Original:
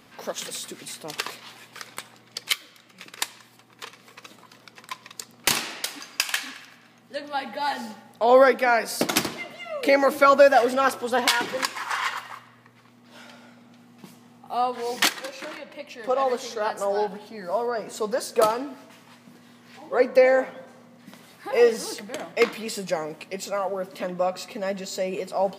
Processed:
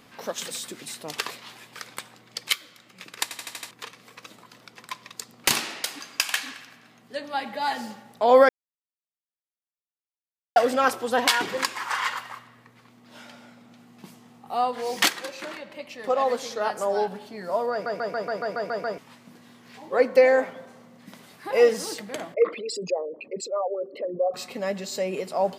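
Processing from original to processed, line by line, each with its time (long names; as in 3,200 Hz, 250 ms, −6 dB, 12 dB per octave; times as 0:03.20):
0:03.23: stutter in place 0.08 s, 6 plays
0:08.49–0:10.56: silence
0:17.72: stutter in place 0.14 s, 9 plays
0:22.34–0:24.34: spectral envelope exaggerated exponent 3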